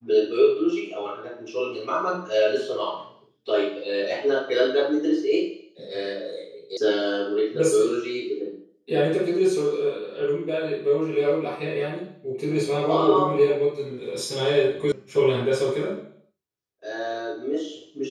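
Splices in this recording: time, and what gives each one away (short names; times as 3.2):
6.77 sound cut off
14.92 sound cut off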